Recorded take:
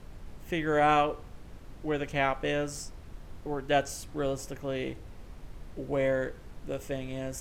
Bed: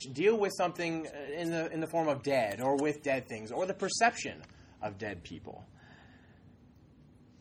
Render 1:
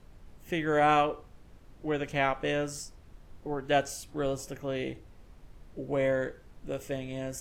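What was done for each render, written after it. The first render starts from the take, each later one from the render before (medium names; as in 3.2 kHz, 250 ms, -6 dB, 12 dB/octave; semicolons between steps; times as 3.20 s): noise print and reduce 7 dB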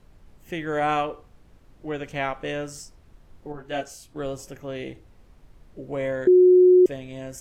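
3.52–4.16 s: detune thickener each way 13 cents; 6.27–6.86 s: bleep 364 Hz -10.5 dBFS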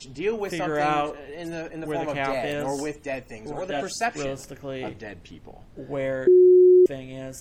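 add bed +0.5 dB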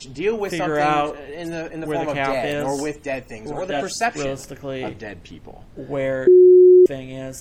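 trim +4.5 dB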